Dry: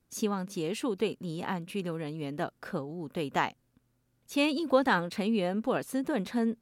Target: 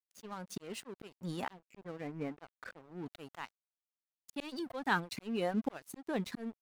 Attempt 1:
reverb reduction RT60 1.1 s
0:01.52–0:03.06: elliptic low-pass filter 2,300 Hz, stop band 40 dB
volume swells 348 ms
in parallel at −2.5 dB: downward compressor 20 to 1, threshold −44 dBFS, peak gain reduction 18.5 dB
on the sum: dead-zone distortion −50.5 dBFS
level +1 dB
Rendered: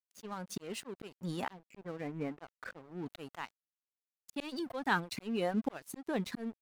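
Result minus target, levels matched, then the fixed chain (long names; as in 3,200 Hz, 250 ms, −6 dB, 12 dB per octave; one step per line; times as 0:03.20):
downward compressor: peak gain reduction −7.5 dB
reverb reduction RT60 1.1 s
0:01.52–0:03.06: elliptic low-pass filter 2,300 Hz, stop band 40 dB
volume swells 348 ms
in parallel at −2.5 dB: downward compressor 20 to 1, threshold −52 dBFS, peak gain reduction 26.5 dB
on the sum: dead-zone distortion −50.5 dBFS
level +1 dB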